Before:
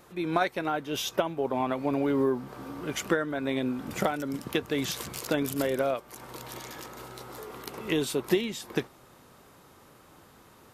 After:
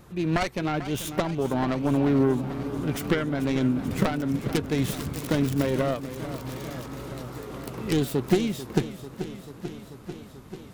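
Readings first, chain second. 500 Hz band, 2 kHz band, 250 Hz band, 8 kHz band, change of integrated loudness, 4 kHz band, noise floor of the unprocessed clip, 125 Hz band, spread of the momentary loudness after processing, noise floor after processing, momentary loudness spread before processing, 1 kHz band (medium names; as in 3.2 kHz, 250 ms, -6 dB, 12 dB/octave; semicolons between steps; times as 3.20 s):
+1.5 dB, 0.0 dB, +5.5 dB, -0.5 dB, +3.0 dB, -0.5 dB, -56 dBFS, +11.0 dB, 14 LU, -46 dBFS, 14 LU, 0.0 dB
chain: self-modulated delay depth 0.37 ms; tone controls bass +13 dB, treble 0 dB; modulated delay 440 ms, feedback 76%, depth 91 cents, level -13 dB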